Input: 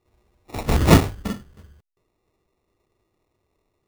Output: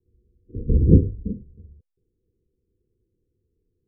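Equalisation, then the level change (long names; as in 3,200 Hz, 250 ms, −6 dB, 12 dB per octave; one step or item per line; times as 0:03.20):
Chebyshev low-pass filter 510 Hz, order 10
low-shelf EQ 230 Hz +8.5 dB
−5.0 dB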